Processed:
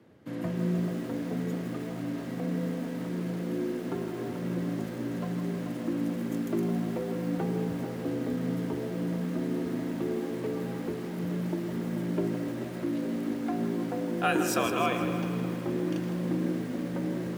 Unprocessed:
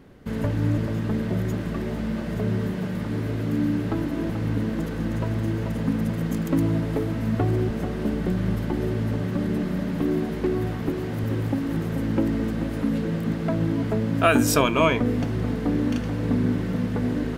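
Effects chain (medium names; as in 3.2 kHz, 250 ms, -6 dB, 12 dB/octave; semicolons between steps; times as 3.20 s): spring tank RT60 3.4 s, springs 32/55 ms, chirp 65 ms, DRR 8.5 dB; frequency shift +67 Hz; bit-crushed delay 159 ms, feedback 55%, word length 6-bit, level -9 dB; trim -8.5 dB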